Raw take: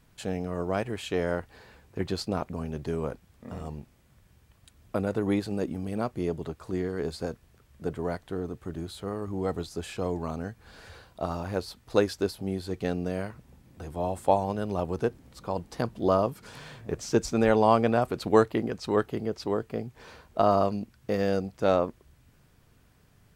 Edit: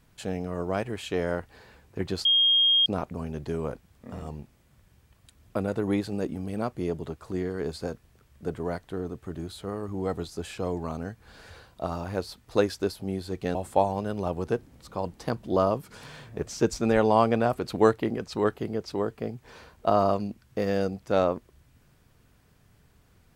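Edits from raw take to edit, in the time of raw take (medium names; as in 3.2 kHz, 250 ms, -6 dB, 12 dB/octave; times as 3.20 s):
2.25 s: add tone 3.24 kHz -17.5 dBFS 0.61 s
12.94–14.07 s: delete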